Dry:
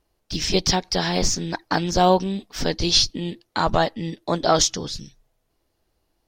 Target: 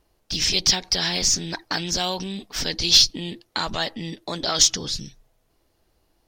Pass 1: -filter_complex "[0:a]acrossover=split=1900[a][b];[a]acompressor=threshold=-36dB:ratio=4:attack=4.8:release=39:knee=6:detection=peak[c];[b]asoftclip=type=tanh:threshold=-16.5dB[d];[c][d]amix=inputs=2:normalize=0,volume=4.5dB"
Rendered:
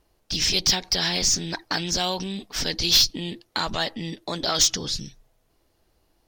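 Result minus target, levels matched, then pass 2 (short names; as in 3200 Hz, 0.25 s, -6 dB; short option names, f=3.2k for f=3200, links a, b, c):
soft clip: distortion +12 dB
-filter_complex "[0:a]acrossover=split=1900[a][b];[a]acompressor=threshold=-36dB:ratio=4:attack=4.8:release=39:knee=6:detection=peak[c];[b]asoftclip=type=tanh:threshold=-7dB[d];[c][d]amix=inputs=2:normalize=0,volume=4.5dB"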